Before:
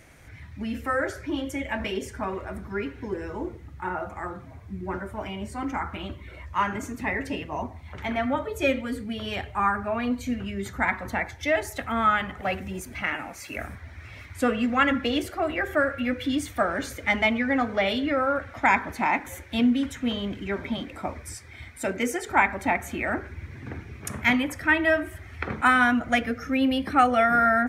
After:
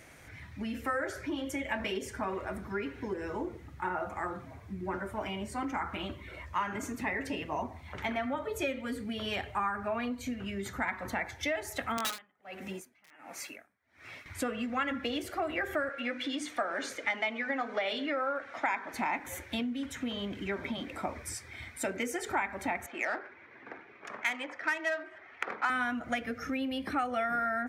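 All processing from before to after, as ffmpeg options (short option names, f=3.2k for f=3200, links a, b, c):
-filter_complex "[0:a]asettb=1/sr,asplit=3[a][b][c];[a]atrim=end=11.974[d];[b]atrim=start=11.97:end=14.26,asetpts=PTS-STARTPTS,afade=t=in:d=0.004:c=qsin,afade=t=out:st=2.286:d=0.004:c=qsin,highpass=190,aeval=exprs='(mod(6.68*val(0)+1,2)-1)/6.68':c=same,aeval=exprs='val(0)*pow(10,-34*(0.5-0.5*cos(2*PI*1.4*n/s))/20)':c=same[e];[c]atrim=start=14.256[f];[d][e]acrossfade=d=0.004:c1=hsin:c2=qsin[g];[g][f]acrossfade=d=0.004:c1=qsin:c2=hsin,asettb=1/sr,asplit=3[h][i][j];[h]atrim=end=15.894[k];[i]atrim=start=15.89:end=18.94,asetpts=PTS-STARTPTS,afade=t=in:d=0.004:c=qsin,afade=t=out:st=3.046:d=0.004:c=qsin,highpass=300,lowpass=7.4k,bandreject=f=50:t=h:w=6,bandreject=f=100:t=h:w=6,bandreject=f=150:t=h:w=6,bandreject=f=200:t=h:w=6,bandreject=f=250:t=h:w=6,bandreject=f=300:t=h:w=6,bandreject=f=350:t=h:w=6,bandreject=f=400:t=h:w=6,bandreject=f=450:t=h:w=6,bandreject=f=500:t=h:w=6[l];[j]atrim=start=18.936[m];[k][l]acrossfade=d=0.004:c1=hsin:c2=qsin[n];[n][m]acrossfade=d=0.004:c1=qsin:c2=hsin,asettb=1/sr,asplit=3[o][p][q];[o]atrim=end=22.864[r];[p]atrim=start=22.86:end=25.7,asetpts=PTS-STARTPTS,afade=t=in:d=0.004:c=qsin,afade=t=out:st=2.836:d=0.004:c=qsin,highpass=530,lowpass=5.9k,adynamicsmooth=sensitivity=2.5:basefreq=2.3k[s];[q]atrim=start=25.696[t];[r][s]acrossfade=d=0.004:c1=hsin:c2=qsin[u];[u][t]acrossfade=d=0.004:c1=qsin:c2=hsin,equalizer=f=130:t=o:w=2.8:g=3.5,acompressor=threshold=-28dB:ratio=6,lowshelf=f=210:g=-11"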